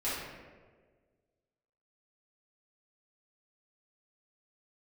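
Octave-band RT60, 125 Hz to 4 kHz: 1.8, 1.7, 1.8, 1.3, 1.2, 0.80 s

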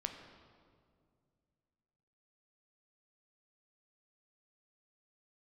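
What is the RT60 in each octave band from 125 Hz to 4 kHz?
3.0, 2.7, 2.4, 1.9, 1.5, 1.4 s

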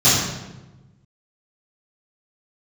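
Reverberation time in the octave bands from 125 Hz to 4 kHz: 1.7, 1.5, 1.2, 1.0, 0.90, 0.75 s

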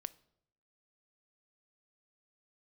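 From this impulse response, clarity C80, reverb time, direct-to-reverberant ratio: 24.5 dB, 0.75 s, 16.0 dB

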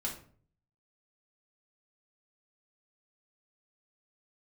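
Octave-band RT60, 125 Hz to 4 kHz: 0.80, 0.60, 0.55, 0.45, 0.40, 0.30 s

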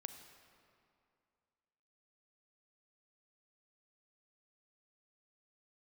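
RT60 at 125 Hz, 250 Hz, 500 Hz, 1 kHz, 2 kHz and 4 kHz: 2.4, 2.5, 2.4, 2.4, 2.1, 1.7 s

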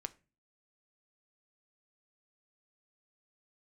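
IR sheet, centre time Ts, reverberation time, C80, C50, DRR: 2 ms, 0.30 s, 26.5 dB, 21.0 dB, 9.5 dB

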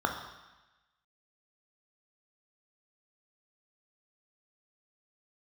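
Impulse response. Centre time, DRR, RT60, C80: 28 ms, 2.5 dB, 1.1 s, 8.5 dB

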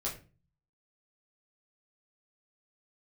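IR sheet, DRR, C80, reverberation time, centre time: -6.5 dB, 14.5 dB, 0.35 s, 24 ms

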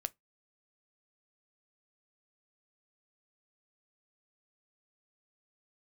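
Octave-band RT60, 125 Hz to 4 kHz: 0.25, 0.20, 0.15, 0.15, 0.15, 0.15 s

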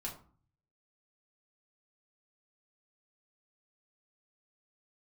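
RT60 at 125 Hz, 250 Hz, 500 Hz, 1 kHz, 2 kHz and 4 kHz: 0.90, 0.60, 0.40, 0.45, 0.30, 0.25 s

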